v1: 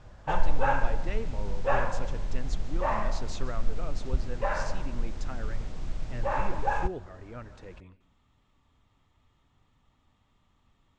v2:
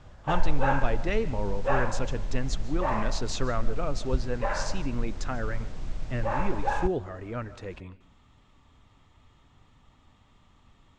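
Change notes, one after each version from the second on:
speech +8.5 dB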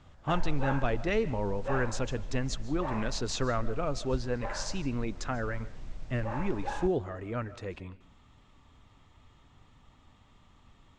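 background -8.0 dB

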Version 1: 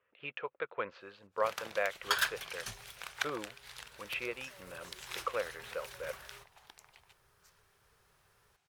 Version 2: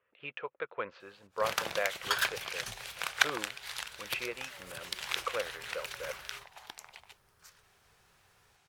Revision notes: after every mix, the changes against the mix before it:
first sound +9.5 dB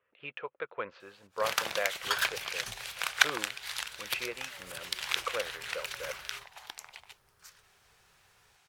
first sound: add tilt shelf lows -3.5 dB, about 660 Hz

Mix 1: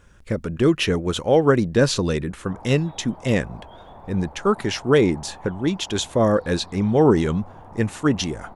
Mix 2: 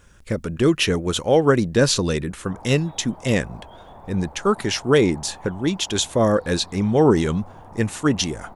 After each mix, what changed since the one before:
speech: add treble shelf 3.9 kHz +7 dB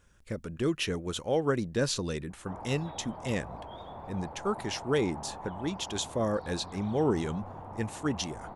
speech -11.5 dB

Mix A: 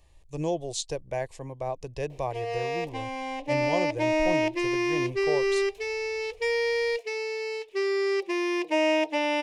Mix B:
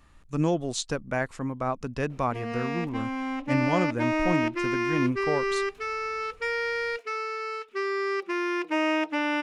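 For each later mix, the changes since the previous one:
background -6.0 dB; master: remove static phaser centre 560 Hz, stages 4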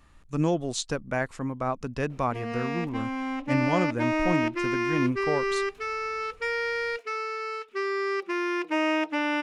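no change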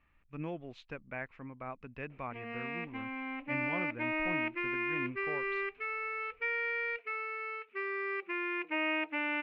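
speech -4.5 dB; master: add four-pole ladder low-pass 2.7 kHz, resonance 60%

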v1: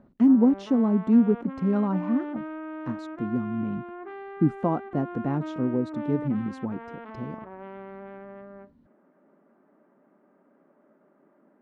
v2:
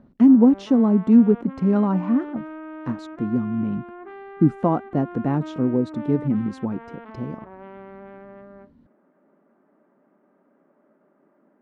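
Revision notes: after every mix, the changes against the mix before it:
speech +5.0 dB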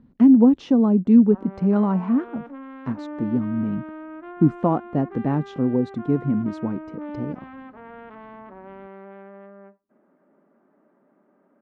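background: entry +1.05 s; master: add distance through air 60 m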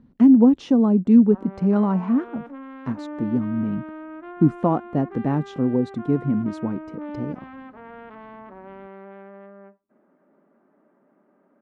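master: remove distance through air 60 m

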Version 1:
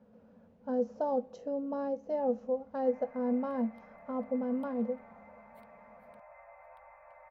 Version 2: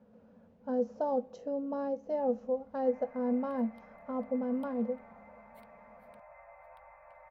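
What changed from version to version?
second sound +4.0 dB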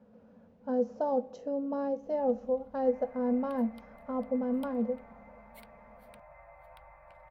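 speech: send +8.0 dB; second sound +10.5 dB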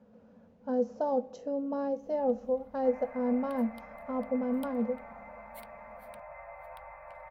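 first sound +7.5 dB; master: add treble shelf 6.7 kHz +7.5 dB

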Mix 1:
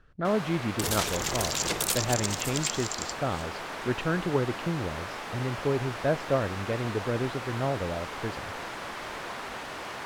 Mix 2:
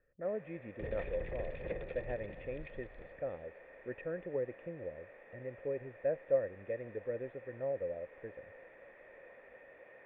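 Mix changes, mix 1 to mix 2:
first sound -6.5 dB; second sound: remove high-pass 440 Hz 6 dB/octave; master: add cascade formant filter e

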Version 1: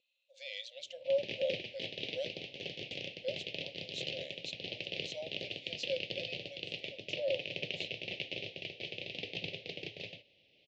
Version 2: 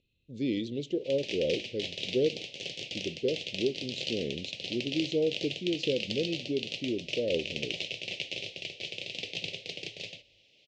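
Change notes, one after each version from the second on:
speech: remove brick-wall FIR high-pass 510 Hz; background: remove distance through air 230 m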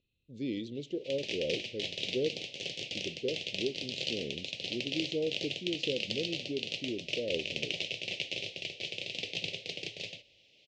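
speech -5.0 dB

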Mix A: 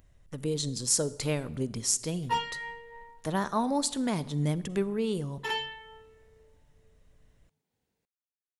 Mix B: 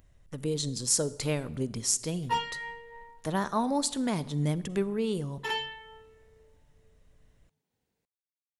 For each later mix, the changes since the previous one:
no change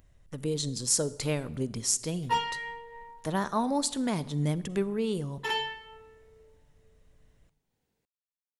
background: send on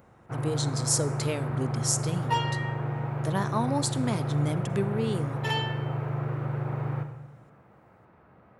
first sound: unmuted; master: add high-pass 75 Hz

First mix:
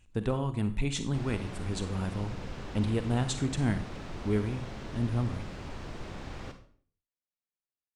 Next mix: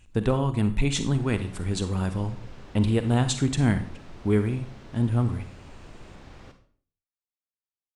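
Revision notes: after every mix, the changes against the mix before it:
speech +6.5 dB; background -5.5 dB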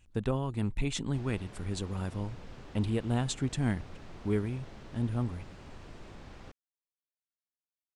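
speech -6.0 dB; reverb: off

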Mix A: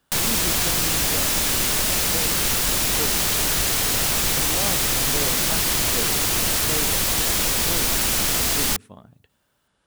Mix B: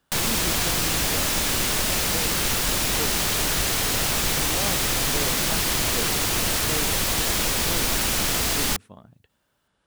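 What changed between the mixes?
speech: send -8.5 dB; master: add treble shelf 6 kHz -4.5 dB

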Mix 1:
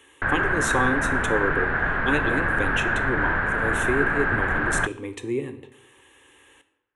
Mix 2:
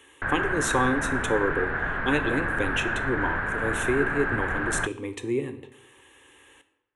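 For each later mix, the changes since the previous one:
background -4.5 dB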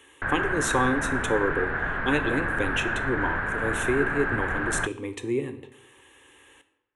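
no change

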